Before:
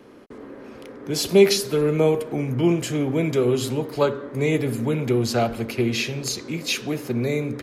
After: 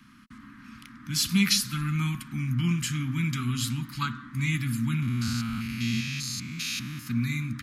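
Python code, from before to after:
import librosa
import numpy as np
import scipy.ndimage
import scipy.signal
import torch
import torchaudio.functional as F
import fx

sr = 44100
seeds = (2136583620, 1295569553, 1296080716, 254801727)

y = fx.spec_steps(x, sr, hold_ms=200, at=(5.02, 7.07))
y = scipy.signal.sosfilt(scipy.signal.cheby1(3, 1.0, [230.0, 1200.0], 'bandstop', fs=sr, output='sos'), y)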